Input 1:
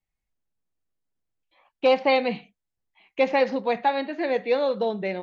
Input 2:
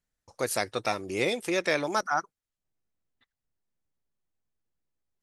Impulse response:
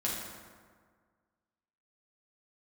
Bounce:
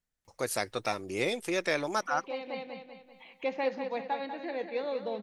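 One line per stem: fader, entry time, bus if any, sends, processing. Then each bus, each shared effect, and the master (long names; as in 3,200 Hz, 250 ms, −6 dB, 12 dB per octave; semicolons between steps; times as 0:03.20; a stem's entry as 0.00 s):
−11.0 dB, 0.25 s, no send, echo send −8.5 dB, upward compression, threshold −28 dBFS; automatic ducking −12 dB, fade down 0.30 s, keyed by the second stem
−3.0 dB, 0.00 s, no send, no echo send, no processing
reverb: not used
echo: repeating echo 194 ms, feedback 45%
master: no processing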